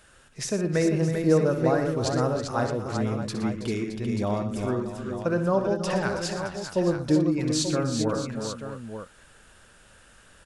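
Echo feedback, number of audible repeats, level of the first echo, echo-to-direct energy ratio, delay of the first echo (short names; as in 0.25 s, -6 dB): no steady repeat, 6, -10.5 dB, -2.0 dB, 63 ms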